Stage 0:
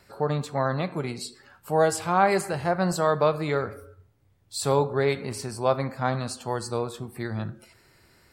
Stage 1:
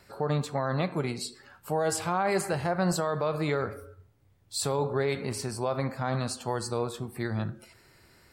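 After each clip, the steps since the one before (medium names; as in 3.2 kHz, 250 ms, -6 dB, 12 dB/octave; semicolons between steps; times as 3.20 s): peak limiter -17.5 dBFS, peak gain reduction 11 dB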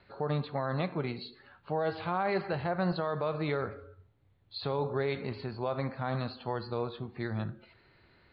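steep low-pass 4.4 kHz 96 dB/octave; trim -3.5 dB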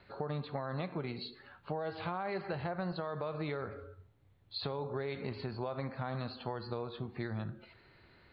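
compression, threshold -35 dBFS, peak gain reduction 9 dB; trim +1 dB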